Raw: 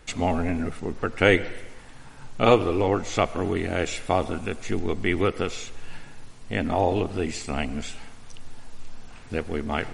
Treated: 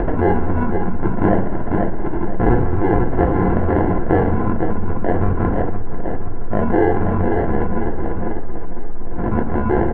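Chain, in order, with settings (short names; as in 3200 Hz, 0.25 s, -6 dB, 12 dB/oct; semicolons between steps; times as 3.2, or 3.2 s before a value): elliptic band-stop 230–770 Hz; bell 940 Hz +8.5 dB 2.2 oct; sample-and-hold 36×; LPF 1500 Hz 24 dB/oct; upward compressor, threshold -24 dBFS; feedback echo 0.496 s, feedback 58%, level -9.5 dB; reverb RT60 0.35 s, pre-delay 3 ms, DRR 4 dB; fast leveller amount 70%; gain -1.5 dB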